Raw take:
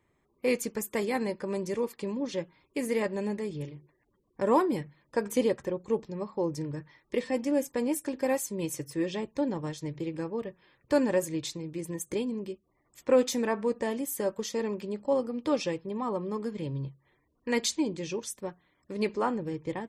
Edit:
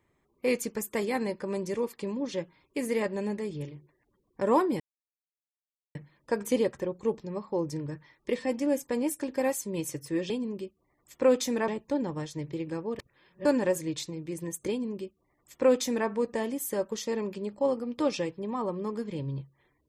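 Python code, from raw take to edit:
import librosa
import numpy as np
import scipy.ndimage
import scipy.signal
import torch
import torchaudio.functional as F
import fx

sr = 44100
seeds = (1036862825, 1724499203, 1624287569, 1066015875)

y = fx.edit(x, sr, fx.insert_silence(at_s=4.8, length_s=1.15),
    fx.reverse_span(start_s=10.46, length_s=0.46),
    fx.duplicate(start_s=12.17, length_s=1.38, to_s=9.15), tone=tone)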